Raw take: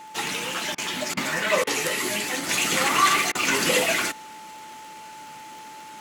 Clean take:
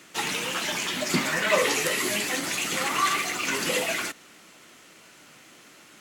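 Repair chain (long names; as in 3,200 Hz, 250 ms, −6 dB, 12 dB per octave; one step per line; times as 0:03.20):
click removal
notch filter 870 Hz, Q 30
repair the gap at 0:00.75/0:01.14/0:01.64/0:03.32, 29 ms
level correction −5 dB, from 0:02.49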